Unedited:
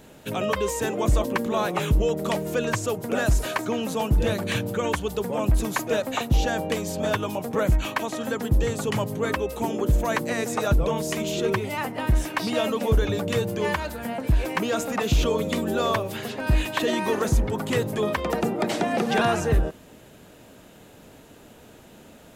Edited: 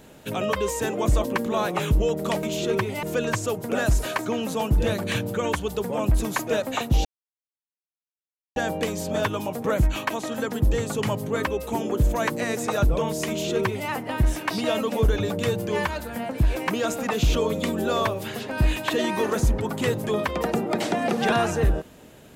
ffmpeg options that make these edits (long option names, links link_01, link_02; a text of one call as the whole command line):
ffmpeg -i in.wav -filter_complex "[0:a]asplit=4[link_01][link_02][link_03][link_04];[link_01]atrim=end=2.432[link_05];[link_02]atrim=start=11.178:end=11.782[link_06];[link_03]atrim=start=2.428:end=6.45,asetpts=PTS-STARTPTS,afade=type=out:start_time=4.018:duration=0.004:curve=hsin,apad=pad_dur=1.51[link_07];[link_04]atrim=start=6.45,asetpts=PTS-STARTPTS,afade=type=in:duration=0.004:curve=hsin[link_08];[link_05][link_06]acrossfade=duration=0.004:curve1=hsin:curve2=hsin[link_09];[link_07][link_08]concat=n=2:v=0:a=1[link_10];[link_09][link_10]acrossfade=duration=0.004:curve1=hsin:curve2=hsin" out.wav